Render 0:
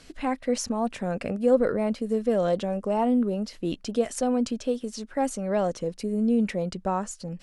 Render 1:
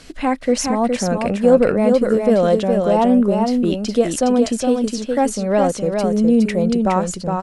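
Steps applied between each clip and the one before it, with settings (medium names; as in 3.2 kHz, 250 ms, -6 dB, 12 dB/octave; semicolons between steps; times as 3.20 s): delay 414 ms -4.5 dB; trim +8.5 dB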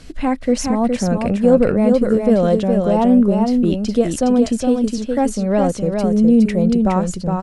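bass shelf 230 Hz +11 dB; trim -3 dB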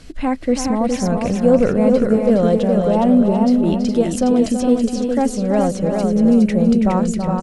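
feedback delay 329 ms, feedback 43%, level -8 dB; trim -1 dB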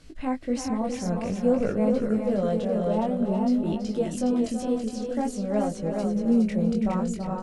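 chorus 0.52 Hz, delay 18.5 ms, depth 4.6 ms; trim -7 dB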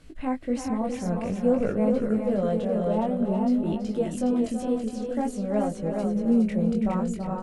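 peaking EQ 5.3 kHz -6.5 dB 0.97 oct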